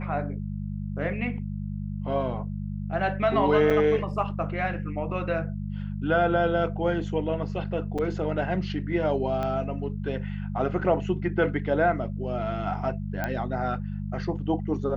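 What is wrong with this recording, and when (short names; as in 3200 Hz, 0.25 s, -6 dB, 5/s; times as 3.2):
hum 50 Hz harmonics 4 -32 dBFS
3.7–3.71 gap 5.8 ms
7.98–7.99 gap 5.5 ms
9.43 pop -19 dBFS
13.24 pop -15 dBFS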